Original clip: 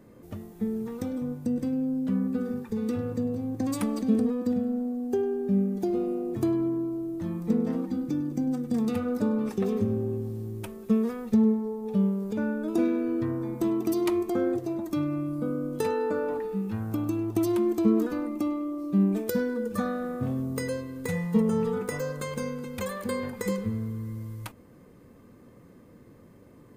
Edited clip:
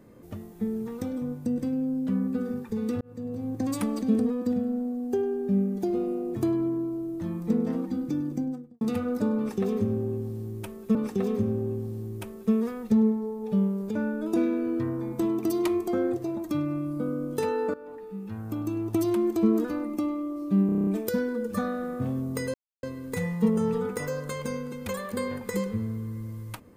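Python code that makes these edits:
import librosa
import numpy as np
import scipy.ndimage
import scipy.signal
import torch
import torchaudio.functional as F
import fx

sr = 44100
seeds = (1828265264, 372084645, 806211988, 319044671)

y = fx.studio_fade_out(x, sr, start_s=8.28, length_s=0.53)
y = fx.edit(y, sr, fx.fade_in_span(start_s=3.01, length_s=0.47),
    fx.repeat(start_s=9.37, length_s=1.58, count=2),
    fx.fade_in_from(start_s=16.16, length_s=1.17, floor_db=-17.5),
    fx.stutter(start_s=19.08, slice_s=0.03, count=8),
    fx.insert_silence(at_s=20.75, length_s=0.29), tone=tone)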